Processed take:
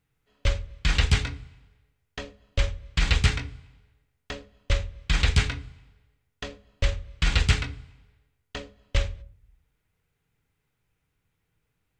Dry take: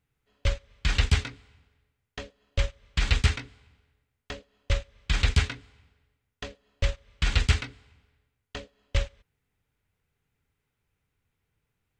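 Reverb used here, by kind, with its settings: simulated room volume 450 m³, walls furnished, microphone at 0.59 m; trim +2 dB

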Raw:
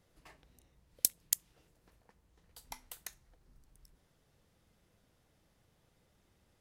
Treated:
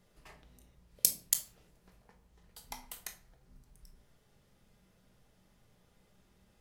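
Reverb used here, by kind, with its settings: simulated room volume 420 m³, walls furnished, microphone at 1.3 m; trim +1.5 dB

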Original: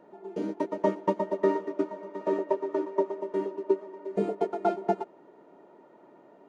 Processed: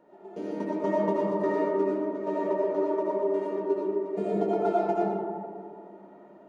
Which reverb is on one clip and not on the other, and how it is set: algorithmic reverb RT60 2.2 s, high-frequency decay 0.3×, pre-delay 45 ms, DRR -5.5 dB; trim -5 dB

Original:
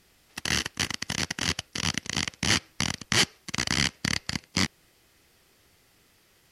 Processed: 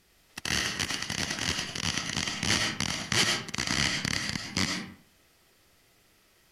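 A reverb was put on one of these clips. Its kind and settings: algorithmic reverb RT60 0.54 s, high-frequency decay 0.65×, pre-delay 60 ms, DRR 1.5 dB; trim -3 dB

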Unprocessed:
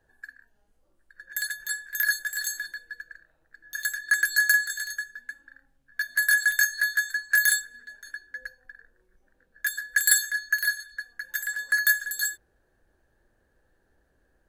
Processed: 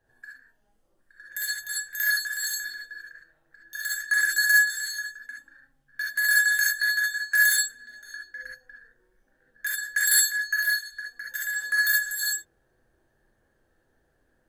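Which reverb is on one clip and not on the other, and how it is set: gated-style reverb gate 90 ms rising, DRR -3.5 dB; trim -4.5 dB

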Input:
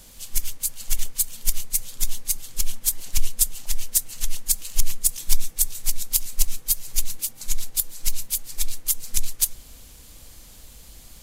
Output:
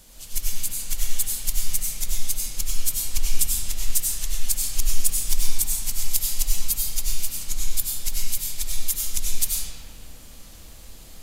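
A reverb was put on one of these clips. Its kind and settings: algorithmic reverb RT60 2.5 s, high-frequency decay 0.5×, pre-delay 55 ms, DRR -5 dB; trim -3.5 dB

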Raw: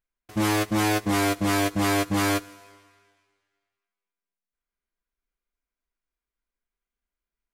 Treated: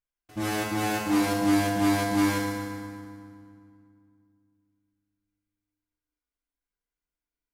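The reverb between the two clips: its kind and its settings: FDN reverb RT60 2.3 s, low-frequency decay 1.4×, high-frequency decay 0.7×, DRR -3 dB; trim -8.5 dB

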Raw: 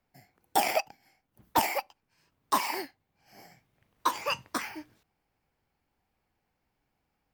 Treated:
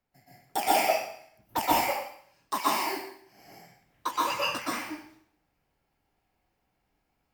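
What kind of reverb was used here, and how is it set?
plate-style reverb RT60 0.63 s, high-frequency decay 0.95×, pre-delay 110 ms, DRR -7 dB; trim -5 dB

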